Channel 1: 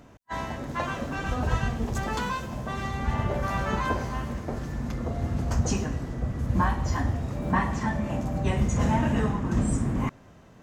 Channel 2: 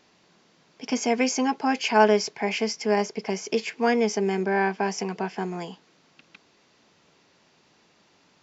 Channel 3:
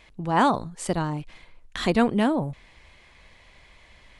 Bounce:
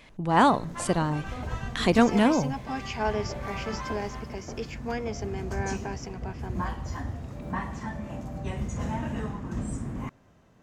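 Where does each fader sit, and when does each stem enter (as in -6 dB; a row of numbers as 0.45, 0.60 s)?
-7.5, -10.5, +0.5 dB; 0.00, 1.05, 0.00 s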